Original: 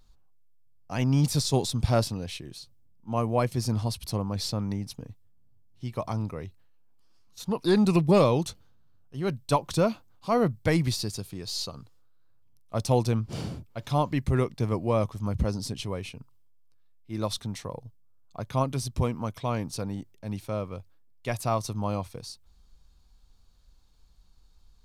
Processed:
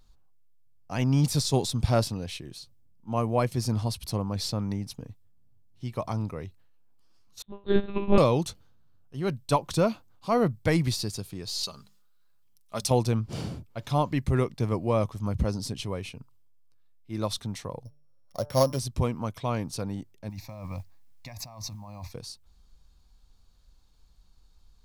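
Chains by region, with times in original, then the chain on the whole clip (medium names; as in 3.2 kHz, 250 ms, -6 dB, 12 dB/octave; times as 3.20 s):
7.42–8.18 s: flutter echo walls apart 4.3 m, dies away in 0.73 s + monotone LPC vocoder at 8 kHz 200 Hz + upward expansion 2.5:1, over -32 dBFS
11.63–12.91 s: tilt shelf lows -6 dB, about 1.3 kHz + hum notches 50/100/150/200 Hz + comb 4.9 ms, depth 42%
17.85–18.79 s: sorted samples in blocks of 8 samples + peaking EQ 560 Hz +14 dB 0.31 oct + de-hum 147 Hz, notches 11
20.29–22.12 s: static phaser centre 2.1 kHz, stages 8 + compressor with a negative ratio -40 dBFS + modulation noise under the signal 31 dB
whole clip: none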